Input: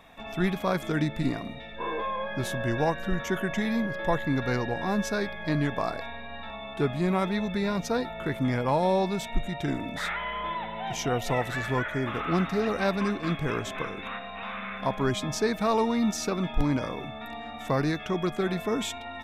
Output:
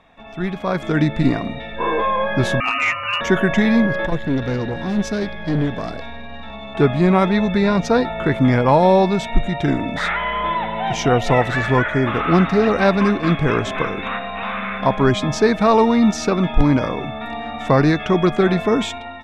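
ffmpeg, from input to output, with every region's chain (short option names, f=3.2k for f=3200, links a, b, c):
-filter_complex "[0:a]asettb=1/sr,asplit=3[a][b][c];[a]atrim=end=2.604[d];[b]atrim=start=2.6:end=3.21,asetpts=PTS-STARTPTS,afade=t=in:d=0.004:c=qsin,afade=t=out:st=0.606:d=0.004:c=qsin,tiltshelf=f=1.3k:g=-8,lowpass=f=2.5k:t=q:w=0.5098,lowpass=f=2.5k:t=q:w=0.6013,lowpass=f=2.5k:t=q:w=0.9,lowpass=f=2.5k:t=q:w=2.563,afreqshift=-2900,asoftclip=type=hard:threshold=-25dB[e];[c]atrim=start=3.206[f];[d][e]acrossfade=d=0.004:c1=hsin:c2=qsin[g];[g][f]acrossfade=d=0.004:c1=qsin:c2=hsin,asettb=1/sr,asplit=3[h][i][j];[h]atrim=end=4.064[k];[i]atrim=start=4.06:end=6.75,asetpts=PTS-STARTPTS,afade=t=in:d=0.004:c=qsin,afade=t=out:st=2.686:d=0.004:c=qsin,acrossover=split=420|3000[l][m][n];[m]acompressor=threshold=-55dB:ratio=1.5:attack=3.2:release=140:knee=2.83:detection=peak[o];[l][o][n]amix=inputs=3:normalize=0,aeval=exprs='(tanh(20*val(0)+0.45)-tanh(0.45))/20':c=same[p];[j]atrim=start=6.746[q];[k][p]acrossfade=d=0.004:c1=hsin:c2=qsin[r];[r][q]acrossfade=d=0.004:c1=qsin:c2=hsin,lowpass=8.7k,aemphasis=mode=reproduction:type=cd,dynaudnorm=f=330:g=5:m=13dB"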